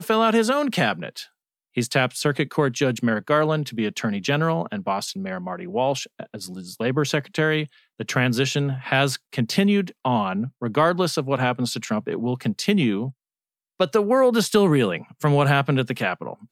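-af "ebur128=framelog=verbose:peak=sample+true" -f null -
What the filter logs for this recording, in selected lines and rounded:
Integrated loudness:
  I:         -22.4 LUFS
  Threshold: -32.8 LUFS
Loudness range:
  LRA:         4.6 LU
  Threshold: -43.2 LUFS
  LRA low:   -25.7 LUFS
  LRA high:  -21.1 LUFS
Sample peak:
  Peak:       -6.6 dBFS
True peak:
  Peak:       -6.6 dBFS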